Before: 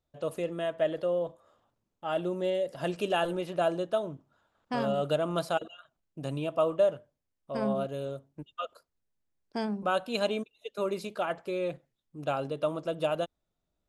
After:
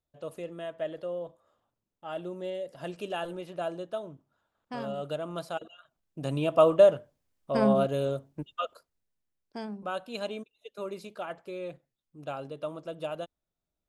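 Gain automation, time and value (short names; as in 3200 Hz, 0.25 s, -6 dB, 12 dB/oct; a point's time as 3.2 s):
5.51 s -6 dB
6.61 s +6.5 dB
8.29 s +6.5 dB
9.6 s -6 dB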